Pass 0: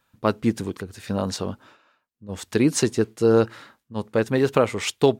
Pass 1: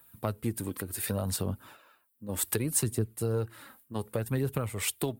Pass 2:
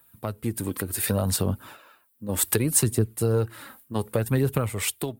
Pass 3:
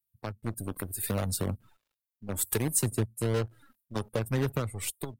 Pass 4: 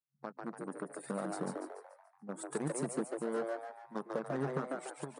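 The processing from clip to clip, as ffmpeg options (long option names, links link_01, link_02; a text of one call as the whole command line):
ffmpeg -i in.wav -filter_complex "[0:a]aphaser=in_gain=1:out_gain=1:delay=4:decay=0.39:speed=0.67:type=triangular,acrossover=split=120[link_01][link_02];[link_02]acompressor=threshold=-32dB:ratio=5[link_03];[link_01][link_03]amix=inputs=2:normalize=0,aexciter=amount=8.5:drive=5.8:freq=8700" out.wav
ffmpeg -i in.wav -af "dynaudnorm=framelen=120:gausssize=9:maxgain=7dB" out.wav
ffmpeg -i in.wav -filter_complex "[0:a]acrossover=split=210|3600[link_01][link_02][link_03];[link_02]acrusher=bits=5:dc=4:mix=0:aa=0.000001[link_04];[link_01][link_04][link_03]amix=inputs=3:normalize=0,afftdn=noise_reduction=20:noise_floor=-40,volume=-6dB" out.wav
ffmpeg -i in.wav -filter_complex "[0:a]afftfilt=real='re*between(b*sr/4096,130,10000)':imag='im*between(b*sr/4096,130,10000)':win_size=4096:overlap=0.75,highshelf=frequency=1900:width_type=q:width=1.5:gain=-10,asplit=2[link_01][link_02];[link_02]asplit=6[link_03][link_04][link_05][link_06][link_07][link_08];[link_03]adelay=144,afreqshift=120,volume=-3.5dB[link_09];[link_04]adelay=288,afreqshift=240,volume=-10.6dB[link_10];[link_05]adelay=432,afreqshift=360,volume=-17.8dB[link_11];[link_06]adelay=576,afreqshift=480,volume=-24.9dB[link_12];[link_07]adelay=720,afreqshift=600,volume=-32dB[link_13];[link_08]adelay=864,afreqshift=720,volume=-39.2dB[link_14];[link_09][link_10][link_11][link_12][link_13][link_14]amix=inputs=6:normalize=0[link_15];[link_01][link_15]amix=inputs=2:normalize=0,volume=-6dB" out.wav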